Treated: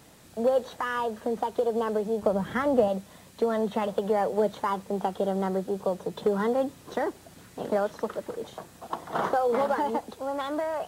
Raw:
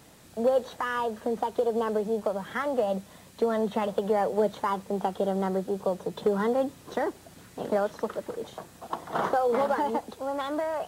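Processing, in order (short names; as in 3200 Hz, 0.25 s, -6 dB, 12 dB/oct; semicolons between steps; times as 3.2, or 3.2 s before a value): 2.22–2.88 low shelf 410 Hz +11 dB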